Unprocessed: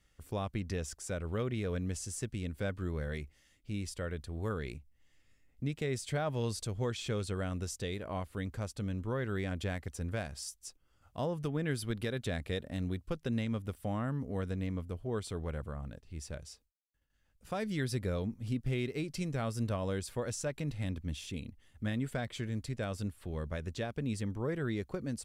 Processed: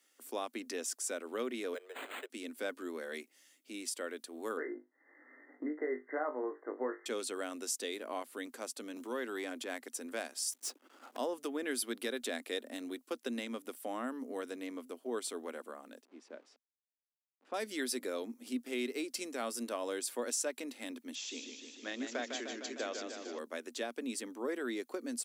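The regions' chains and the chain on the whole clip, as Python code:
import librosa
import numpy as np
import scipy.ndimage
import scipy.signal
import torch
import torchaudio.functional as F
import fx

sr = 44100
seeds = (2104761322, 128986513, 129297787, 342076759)

y = fx.chain(x, sr, fx.steep_highpass(hz=400.0, slope=72),
    fx.resample_linear(factor=8), at=(1.74, 2.3))
y = fx.chain(y, sr, fx.brickwall_bandpass(low_hz=250.0, high_hz=2100.0),
    fx.room_flutter(wall_m=3.4, rt60_s=0.2),
    fx.band_squash(depth_pct=70), at=(4.57, 7.06))
y = fx.chain(y, sr, fx.transient(attack_db=-7, sustain_db=-2),
    fx.band_squash(depth_pct=40), at=(8.96, 9.82))
y = fx.chain(y, sr, fx.lowpass(hz=1200.0, slope=6),
    fx.leveller(passes=5), at=(10.52, 11.17))
y = fx.chain(y, sr, fx.delta_hold(step_db=-55.5),
    fx.spacing_loss(db_at_10k=35), at=(16.05, 17.54))
y = fx.chain(y, sr, fx.highpass(hz=260.0, slope=24),
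    fx.resample_bad(factor=3, down='none', up='filtered'),
    fx.echo_warbled(ms=152, feedback_pct=71, rate_hz=2.8, cents=81, wet_db=-6.0), at=(21.15, 23.39))
y = scipy.signal.sosfilt(scipy.signal.cheby1(6, 1.0, 240.0, 'highpass', fs=sr, output='sos'), y)
y = fx.high_shelf(y, sr, hz=5700.0, db=12.0)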